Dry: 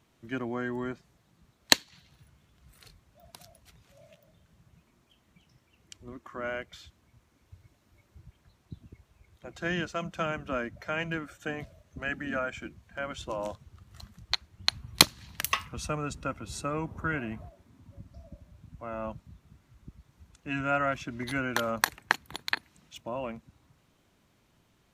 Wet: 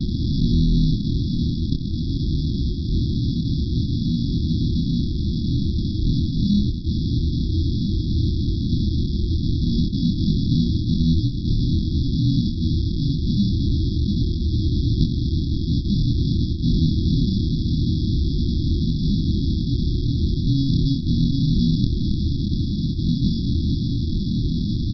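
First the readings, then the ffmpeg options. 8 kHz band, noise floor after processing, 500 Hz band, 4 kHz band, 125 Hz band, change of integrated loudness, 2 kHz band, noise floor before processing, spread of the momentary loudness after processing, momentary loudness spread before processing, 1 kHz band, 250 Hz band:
under -10 dB, -25 dBFS, -1.5 dB, +2.5 dB, +25.0 dB, +9.5 dB, under -40 dB, -68 dBFS, 4 LU, 23 LU, under -40 dB, +18.5 dB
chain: -filter_complex "[0:a]aeval=exprs='val(0)+0.5*0.126*sgn(val(0))':c=same,highshelf=f=2000:g=-11,aresample=11025,acrusher=samples=27:mix=1:aa=0.000001,aresample=44100,asplit=2[s0][s1];[s1]adelay=25,volume=0.668[s2];[s0][s2]amix=inputs=2:normalize=0,afftfilt=real='re*(1-between(b*sr/4096,370,3300))':imag='im*(1-between(b*sr/4096,370,3300))':win_size=4096:overlap=0.75,volume=1.5"

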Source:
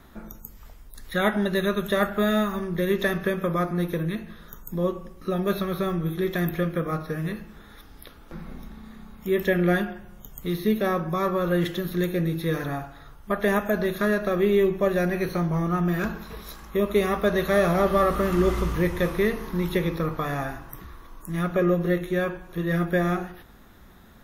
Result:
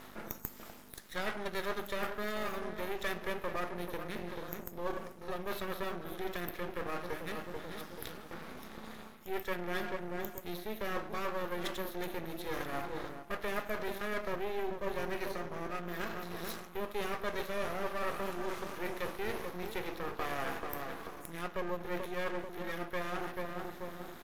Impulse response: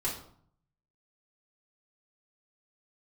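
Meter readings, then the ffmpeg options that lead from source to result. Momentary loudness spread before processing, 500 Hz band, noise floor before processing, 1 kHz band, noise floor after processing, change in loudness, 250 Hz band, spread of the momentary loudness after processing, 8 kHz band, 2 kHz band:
18 LU, -13.5 dB, -49 dBFS, -9.0 dB, -50 dBFS, -14.0 dB, -17.5 dB, 7 LU, -6.5 dB, -9.5 dB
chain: -filter_complex "[0:a]acontrast=89,aeval=exprs='val(0)+0.0224*(sin(2*PI*50*n/s)+sin(2*PI*2*50*n/s)/2+sin(2*PI*3*50*n/s)/3+sin(2*PI*4*50*n/s)/4+sin(2*PI*5*50*n/s)/5)':c=same,asplit=2[s0][s1];[s1]adelay=437,lowpass=f=960:p=1,volume=0.355,asplit=2[s2][s3];[s3]adelay=437,lowpass=f=960:p=1,volume=0.46,asplit=2[s4][s5];[s5]adelay=437,lowpass=f=960:p=1,volume=0.46,asplit=2[s6][s7];[s7]adelay=437,lowpass=f=960:p=1,volume=0.46,asplit=2[s8][s9];[s9]adelay=437,lowpass=f=960:p=1,volume=0.46[s10];[s0][s2][s4][s6][s8][s10]amix=inputs=6:normalize=0,areverse,acompressor=threshold=0.0398:ratio=10,areverse,aresample=32000,aresample=44100,highpass=370,aeval=exprs='max(val(0),0)':c=same,volume=1.12"

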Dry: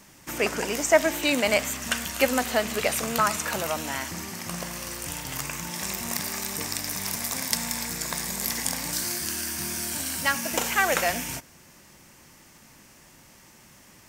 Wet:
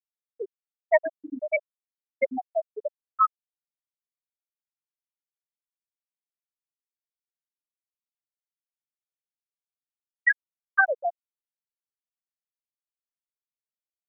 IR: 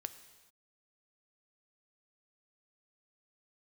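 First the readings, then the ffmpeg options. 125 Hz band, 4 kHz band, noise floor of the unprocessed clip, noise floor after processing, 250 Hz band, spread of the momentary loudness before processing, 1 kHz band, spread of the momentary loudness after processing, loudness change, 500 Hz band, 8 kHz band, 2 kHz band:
under -35 dB, under -40 dB, -53 dBFS, under -85 dBFS, -13.0 dB, 10 LU, -2.5 dB, 14 LU, -0.5 dB, -3.5 dB, under -40 dB, -1.5 dB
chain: -af "afftfilt=real='re*gte(hypot(re,im),0.562)':imag='im*gte(hypot(re,im),0.562)':win_size=1024:overlap=0.75,dynaudnorm=f=690:g=9:m=1.78,crystalizer=i=9:c=0,volume=0.631"

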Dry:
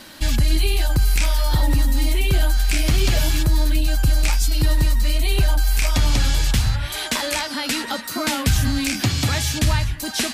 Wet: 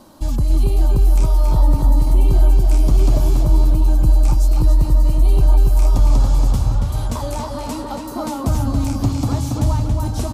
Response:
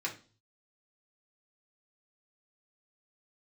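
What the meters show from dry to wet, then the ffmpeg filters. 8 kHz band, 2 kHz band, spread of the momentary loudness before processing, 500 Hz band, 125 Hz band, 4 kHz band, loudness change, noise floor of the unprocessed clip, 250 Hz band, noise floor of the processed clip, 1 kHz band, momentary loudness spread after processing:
-8.5 dB, -15.5 dB, 4 LU, +2.0 dB, +4.0 dB, -13.0 dB, +3.0 dB, -30 dBFS, +2.5 dB, -27 dBFS, +1.5 dB, 9 LU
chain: -filter_complex "[0:a]firequalizer=gain_entry='entry(1100,0);entry(1700,-20);entry(6300,-9)':delay=0.05:min_phase=1,asplit=2[s0][s1];[s1]adelay=279,lowpass=f=4400:p=1,volume=0.708,asplit=2[s2][s3];[s3]adelay=279,lowpass=f=4400:p=1,volume=0.54,asplit=2[s4][s5];[s5]adelay=279,lowpass=f=4400:p=1,volume=0.54,asplit=2[s6][s7];[s7]adelay=279,lowpass=f=4400:p=1,volume=0.54,asplit=2[s8][s9];[s9]adelay=279,lowpass=f=4400:p=1,volume=0.54,asplit=2[s10][s11];[s11]adelay=279,lowpass=f=4400:p=1,volume=0.54,asplit=2[s12][s13];[s13]adelay=279,lowpass=f=4400:p=1,volume=0.54[s14];[s0][s2][s4][s6][s8][s10][s12][s14]amix=inputs=8:normalize=0"

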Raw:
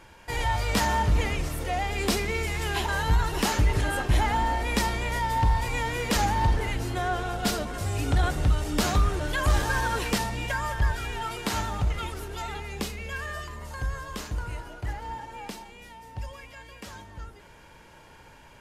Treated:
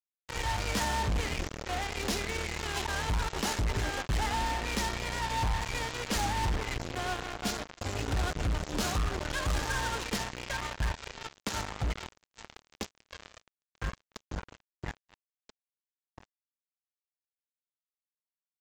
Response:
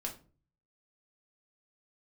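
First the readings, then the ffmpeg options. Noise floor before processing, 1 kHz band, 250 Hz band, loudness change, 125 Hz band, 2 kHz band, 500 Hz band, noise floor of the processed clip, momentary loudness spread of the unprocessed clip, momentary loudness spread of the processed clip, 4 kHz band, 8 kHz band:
-51 dBFS, -6.5 dB, -6.5 dB, -5.5 dB, -8.0 dB, -5.5 dB, -6.5 dB, under -85 dBFS, 15 LU, 12 LU, -3.0 dB, -3.0 dB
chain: -af "aresample=16000,acrusher=bits=3:mix=0:aa=0.5,aresample=44100,asoftclip=type=hard:threshold=0.0501"

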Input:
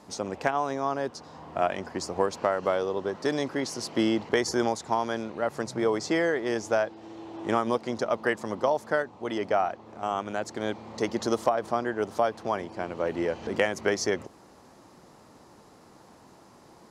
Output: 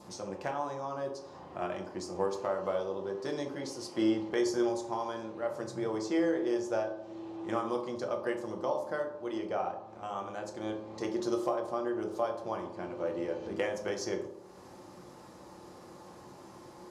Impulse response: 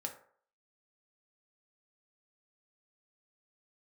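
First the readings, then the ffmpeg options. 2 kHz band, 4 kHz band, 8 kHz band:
-11.0 dB, -8.5 dB, -8.5 dB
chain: -filter_complex "[0:a]acompressor=mode=upward:threshold=0.02:ratio=2.5,adynamicequalizer=threshold=0.00447:dfrequency=1800:dqfactor=1.9:tfrequency=1800:tqfactor=1.9:attack=5:release=100:ratio=0.375:range=2.5:mode=cutabove:tftype=bell[s0];[1:a]atrim=start_sample=2205,asetrate=28665,aresample=44100[s1];[s0][s1]afir=irnorm=-1:irlink=0,volume=0.355"

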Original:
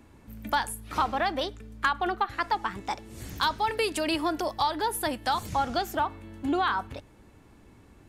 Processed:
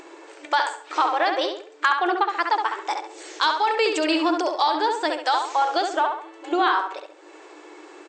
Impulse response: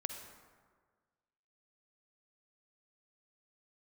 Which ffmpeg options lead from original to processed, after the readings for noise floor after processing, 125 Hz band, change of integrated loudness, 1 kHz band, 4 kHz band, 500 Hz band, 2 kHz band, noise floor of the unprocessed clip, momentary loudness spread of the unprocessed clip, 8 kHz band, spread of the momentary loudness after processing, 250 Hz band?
-47 dBFS, under -30 dB, +6.0 dB, +6.5 dB, +6.0 dB, +6.5 dB, +6.5 dB, -55 dBFS, 9 LU, 0.0 dB, 8 LU, +4.5 dB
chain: -filter_complex "[0:a]afftfilt=real='re*between(b*sr/4096,300,8400)':imag='im*between(b*sr/4096,300,8400)':win_size=4096:overlap=0.75,acompressor=mode=upward:threshold=0.01:ratio=2.5,asplit=2[s0][s1];[s1]adelay=68,lowpass=f=3600:p=1,volume=0.596,asplit=2[s2][s3];[s3]adelay=68,lowpass=f=3600:p=1,volume=0.4,asplit=2[s4][s5];[s5]adelay=68,lowpass=f=3600:p=1,volume=0.4,asplit=2[s6][s7];[s7]adelay=68,lowpass=f=3600:p=1,volume=0.4,asplit=2[s8][s9];[s9]adelay=68,lowpass=f=3600:p=1,volume=0.4[s10];[s0][s2][s4][s6][s8][s10]amix=inputs=6:normalize=0,volume=1.78"

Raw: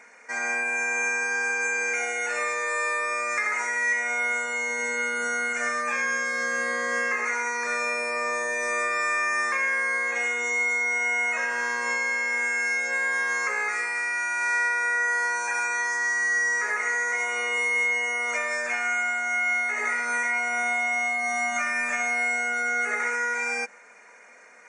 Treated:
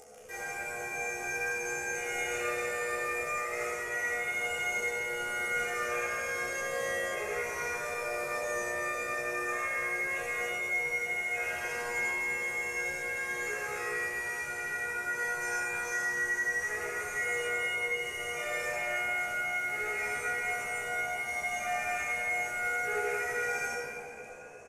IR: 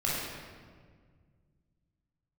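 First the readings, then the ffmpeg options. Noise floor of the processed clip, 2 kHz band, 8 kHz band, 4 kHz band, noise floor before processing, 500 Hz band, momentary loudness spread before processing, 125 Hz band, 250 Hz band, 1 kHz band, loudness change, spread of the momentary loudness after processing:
-40 dBFS, -8.0 dB, -6.5 dB, -4.0 dB, -50 dBFS, -2.0 dB, 3 LU, no reading, -4.5 dB, -7.5 dB, -7.5 dB, 4 LU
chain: -filter_complex "[0:a]equalizer=f=2900:t=o:w=0.78:g=11,bandreject=f=60:t=h:w=6,bandreject=f=120:t=h:w=6,bandreject=f=180:t=h:w=6,bandreject=f=240:t=h:w=6,tremolo=f=90:d=0.333,flanger=delay=1.5:depth=7:regen=-1:speed=0.29:shape=sinusoidal,acrossover=split=990|4300[s0][s1][s2];[s1]acrusher=bits=6:mix=0:aa=0.000001[s3];[s0][s3][s2]amix=inputs=3:normalize=0,aresample=32000,aresample=44100,areverse,acompressor=threshold=0.0251:ratio=6,areverse,equalizer=f=125:t=o:w=1:g=6,equalizer=f=500:t=o:w=1:g=6,equalizer=f=1000:t=o:w=1:g=-6,equalizer=f=2000:t=o:w=1:g=-9,equalizer=f=4000:t=o:w=1:g=-6,asplit=6[s4][s5][s6][s7][s8][s9];[s5]adelay=314,afreqshift=62,volume=0.141[s10];[s6]adelay=628,afreqshift=124,volume=0.0822[s11];[s7]adelay=942,afreqshift=186,volume=0.0473[s12];[s8]adelay=1256,afreqshift=248,volume=0.0275[s13];[s9]adelay=1570,afreqshift=310,volume=0.016[s14];[s4][s10][s11][s12][s13][s14]amix=inputs=6:normalize=0[s15];[1:a]atrim=start_sample=2205,asetrate=26019,aresample=44100[s16];[s15][s16]afir=irnorm=-1:irlink=0,acompressor=mode=upward:threshold=0.00708:ratio=2.5,asplit=2[s17][s18];[s18]adelay=14,volume=0.596[s19];[s17][s19]amix=inputs=2:normalize=0,volume=0.531"

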